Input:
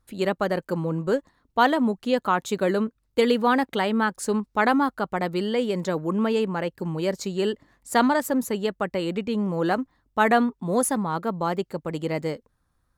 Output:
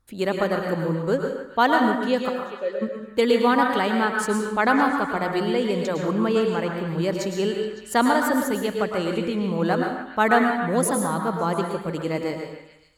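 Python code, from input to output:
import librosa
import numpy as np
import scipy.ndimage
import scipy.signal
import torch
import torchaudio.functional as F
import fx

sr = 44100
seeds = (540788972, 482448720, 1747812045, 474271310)

y = fx.vowel_filter(x, sr, vowel='e', at=(2.28, 2.81), fade=0.02)
y = fx.echo_stepped(y, sr, ms=140, hz=1100.0, octaves=0.7, feedback_pct=70, wet_db=-8.0)
y = fx.rev_plate(y, sr, seeds[0], rt60_s=0.73, hf_ratio=0.85, predelay_ms=95, drr_db=2.5)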